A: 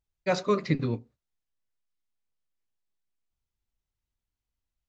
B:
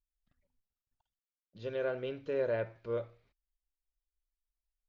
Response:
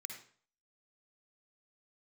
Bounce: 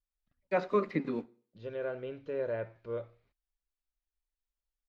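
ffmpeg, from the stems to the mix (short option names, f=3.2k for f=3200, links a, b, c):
-filter_complex "[0:a]highpass=f=200:w=0.5412,highpass=f=200:w=1.3066,aeval=exprs='sgn(val(0))*max(abs(val(0))-0.00211,0)':c=same,adelay=250,volume=-2.5dB,asplit=2[a][b];[b]volume=-15.5dB[c];[1:a]volume=-2dB[d];[2:a]atrim=start_sample=2205[e];[c][e]afir=irnorm=-1:irlink=0[f];[a][d][f]amix=inputs=3:normalize=0,acrossover=split=2900[g][h];[h]acompressor=threshold=-60dB:ratio=4:attack=1:release=60[i];[g][i]amix=inputs=2:normalize=0,lowpass=f=3.9k:p=1"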